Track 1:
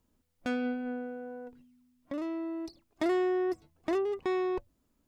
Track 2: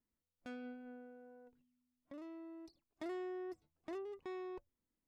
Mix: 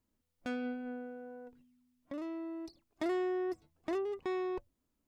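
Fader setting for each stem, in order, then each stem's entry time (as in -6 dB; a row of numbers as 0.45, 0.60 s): -9.0, +0.5 dB; 0.00, 0.00 s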